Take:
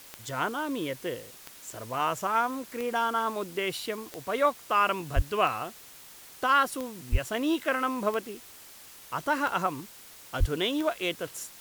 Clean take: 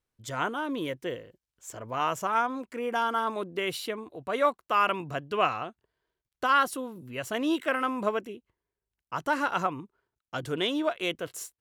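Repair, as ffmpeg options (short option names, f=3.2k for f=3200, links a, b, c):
-filter_complex "[0:a]adeclick=t=4,asplit=3[a][b][c];[a]afade=t=out:st=5.15:d=0.02[d];[b]highpass=f=140:w=0.5412,highpass=f=140:w=1.3066,afade=t=in:st=5.15:d=0.02,afade=t=out:st=5.27:d=0.02[e];[c]afade=t=in:st=5.27:d=0.02[f];[d][e][f]amix=inputs=3:normalize=0,asplit=3[g][h][i];[g]afade=t=out:st=7.11:d=0.02[j];[h]highpass=f=140:w=0.5412,highpass=f=140:w=1.3066,afade=t=in:st=7.11:d=0.02,afade=t=out:st=7.23:d=0.02[k];[i]afade=t=in:st=7.23:d=0.02[l];[j][k][l]amix=inputs=3:normalize=0,asplit=3[m][n][o];[m]afade=t=out:st=10.39:d=0.02[p];[n]highpass=f=140:w=0.5412,highpass=f=140:w=1.3066,afade=t=in:st=10.39:d=0.02,afade=t=out:st=10.51:d=0.02[q];[o]afade=t=in:st=10.51:d=0.02[r];[p][q][r]amix=inputs=3:normalize=0,afwtdn=0.0035"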